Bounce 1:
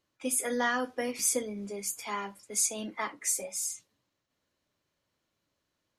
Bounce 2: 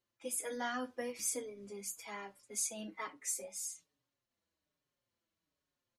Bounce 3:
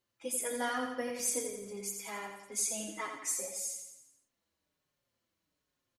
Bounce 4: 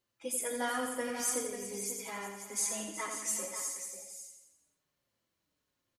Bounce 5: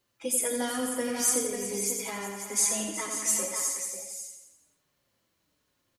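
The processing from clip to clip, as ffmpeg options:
ffmpeg -i in.wav -filter_complex "[0:a]asplit=2[link_01][link_02];[link_02]adelay=5.2,afreqshift=-1.2[link_03];[link_01][link_03]amix=inputs=2:normalize=1,volume=-5.5dB" out.wav
ffmpeg -i in.wav -af "aecho=1:1:86|172|258|344|430|516:0.501|0.261|0.136|0.0705|0.0366|0.0191,volume=3dB" out.wav
ffmpeg -i in.wav -af "aecho=1:1:370|541:0.224|0.335" out.wav
ffmpeg -i in.wav -filter_complex "[0:a]acrossover=split=480|3000[link_01][link_02][link_03];[link_02]acompressor=threshold=-45dB:ratio=6[link_04];[link_01][link_04][link_03]amix=inputs=3:normalize=0,volume=8dB" out.wav

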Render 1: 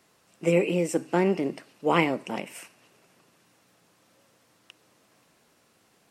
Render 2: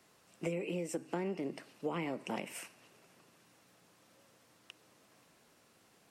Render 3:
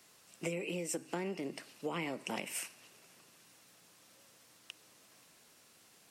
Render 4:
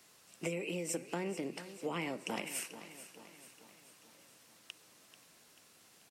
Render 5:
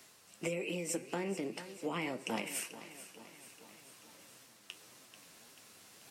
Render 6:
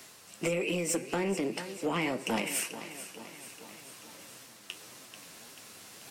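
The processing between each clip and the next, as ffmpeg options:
ffmpeg -i in.wav -filter_complex "[0:a]acrossover=split=330[link_01][link_02];[link_02]alimiter=limit=-18.5dB:level=0:latency=1[link_03];[link_01][link_03]amix=inputs=2:normalize=0,acompressor=threshold=-31dB:ratio=8,volume=-2.5dB" out.wav
ffmpeg -i in.wav -af "highshelf=frequency=2200:gain=10,volume=-2dB" out.wav
ffmpeg -i in.wav -af "aecho=1:1:438|876|1314|1752|2190:0.211|0.112|0.0594|0.0315|0.0167" out.wav
ffmpeg -i in.wav -af "areverse,acompressor=mode=upward:threshold=-52dB:ratio=2.5,areverse,flanger=delay=7.2:depth=3.8:regen=62:speed=1.8:shape=triangular,volume=5dB" out.wav
ffmpeg -i in.wav -af "asoftclip=type=tanh:threshold=-30dB,volume=8dB" out.wav

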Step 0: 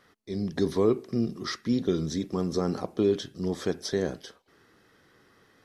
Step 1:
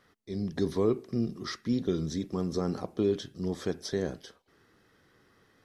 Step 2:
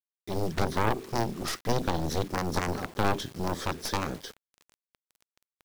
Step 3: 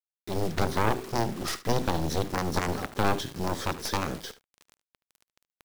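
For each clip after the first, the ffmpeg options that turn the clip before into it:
ffmpeg -i in.wav -af "lowshelf=frequency=140:gain=5,volume=-4dB" out.wav
ffmpeg -i in.wav -af "acrusher=bits=8:mix=0:aa=0.000001,alimiter=limit=-20.5dB:level=0:latency=1:release=155,aeval=exprs='0.0944*(cos(1*acos(clip(val(0)/0.0944,-1,1)))-cos(1*PI/2))+0.0422*(cos(3*acos(clip(val(0)/0.0944,-1,1)))-cos(3*PI/2))+0.0422*(cos(4*acos(clip(val(0)/0.0944,-1,1)))-cos(4*PI/2))+0.0188*(cos(7*acos(clip(val(0)/0.0944,-1,1)))-cos(7*PI/2))':channel_layout=same,volume=2dB" out.wav
ffmpeg -i in.wav -af "acrusher=bits=8:dc=4:mix=0:aa=0.000001,aecho=1:1:74:0.133,volume=1dB" out.wav

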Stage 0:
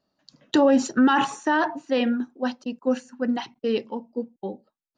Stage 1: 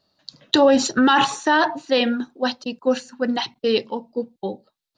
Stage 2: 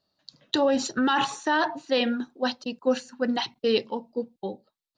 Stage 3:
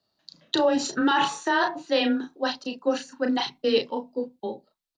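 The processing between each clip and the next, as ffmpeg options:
ffmpeg -i in.wav -filter_complex "[0:a]equalizer=frequency=100:width_type=o:width=0.67:gain=5,equalizer=frequency=250:width_type=o:width=0.67:gain=-5,equalizer=frequency=4000:width_type=o:width=0.67:gain=10,asplit=2[link_01][link_02];[link_02]alimiter=limit=-14dB:level=0:latency=1:release=109,volume=-1dB[link_03];[link_01][link_03]amix=inputs=2:normalize=0" out.wav
ffmpeg -i in.wav -af "dynaudnorm=framelen=310:gausssize=7:maxgain=6dB,volume=-8dB" out.wav
ffmpeg -i in.wav -filter_complex "[0:a]asplit=2[link_01][link_02];[link_02]adelay=34,volume=-5.5dB[link_03];[link_01][link_03]amix=inputs=2:normalize=0,afreqshift=16" out.wav

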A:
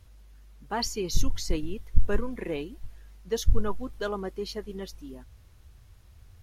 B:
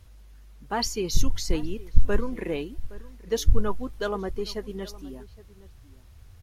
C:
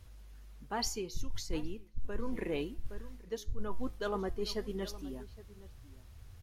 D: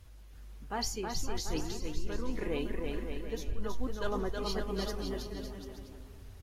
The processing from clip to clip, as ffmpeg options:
ffmpeg -i in.wav -filter_complex "[0:a]asplit=2[link_01][link_02];[link_02]adelay=816.3,volume=-19dB,highshelf=frequency=4000:gain=-18.4[link_03];[link_01][link_03]amix=inputs=2:normalize=0,volume=2.5dB" out.wav
ffmpeg -i in.wav -af "areverse,acompressor=threshold=-28dB:ratio=8,areverse,flanger=delay=7.8:depth=1.9:regen=88:speed=1.9:shape=triangular,volume=2dB" out.wav
ffmpeg -i in.wav -filter_complex "[0:a]asplit=2[link_01][link_02];[link_02]aecho=0:1:320|560|740|875|976.2:0.631|0.398|0.251|0.158|0.1[link_03];[link_01][link_03]amix=inputs=2:normalize=0" -ar 44100 -c:a aac -b:a 48k out.aac

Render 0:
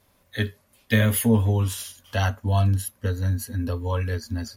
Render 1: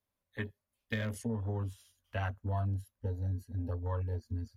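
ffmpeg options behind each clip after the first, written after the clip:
ffmpeg -i in.wav -filter_complex "[0:a]afwtdn=0.0251,acrossover=split=140|7800[link_01][link_02][link_03];[link_01]acompressor=threshold=-35dB:ratio=4[link_04];[link_02]acompressor=threshold=-24dB:ratio=4[link_05];[link_03]acompressor=threshold=-56dB:ratio=4[link_06];[link_04][link_05][link_06]amix=inputs=3:normalize=0,asubboost=boost=4.5:cutoff=98,volume=-9dB" out.wav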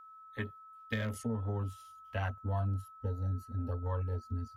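ffmpeg -i in.wav -af "aeval=exprs='val(0)+0.00282*sin(2*PI*1300*n/s)':channel_layout=same" out.wav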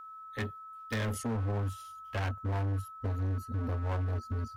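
ffmpeg -i in.wav -af "asoftclip=type=hard:threshold=-36dB,volume=6.5dB" out.wav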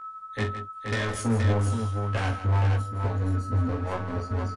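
ffmpeg -i in.wav -filter_complex "[0:a]flanger=delay=16:depth=3.4:speed=0.98,asplit=2[link_01][link_02];[link_02]aecho=0:1:43|162|474:0.376|0.266|0.531[link_03];[link_01][link_03]amix=inputs=2:normalize=0,aresample=22050,aresample=44100,volume=9dB" out.wav

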